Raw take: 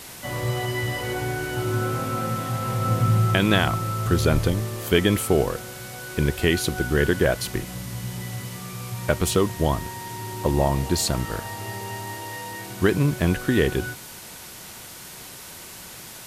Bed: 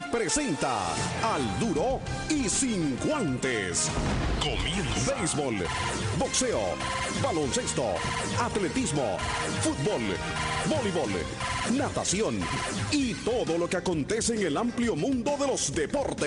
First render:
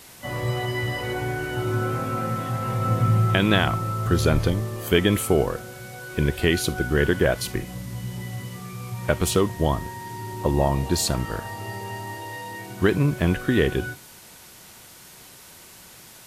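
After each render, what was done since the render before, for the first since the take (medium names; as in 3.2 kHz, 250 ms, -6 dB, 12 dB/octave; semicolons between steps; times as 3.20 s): noise print and reduce 6 dB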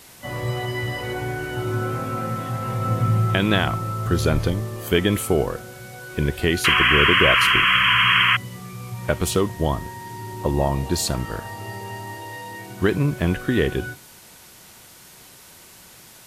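6.64–8.37 s: painted sound noise 970–3300 Hz -17 dBFS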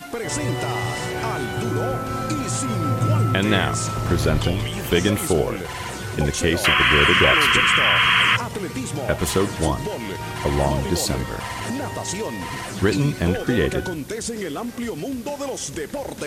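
add bed -1 dB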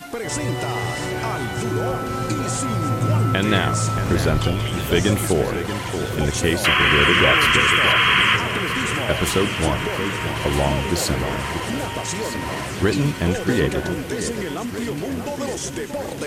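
echo whose repeats swap between lows and highs 631 ms, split 2.4 kHz, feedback 79%, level -8.5 dB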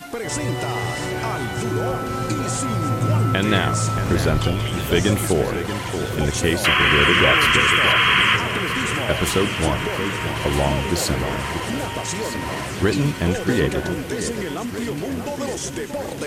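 no audible change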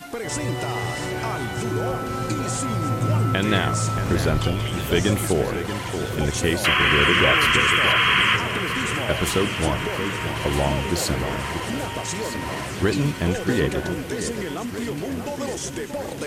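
trim -2 dB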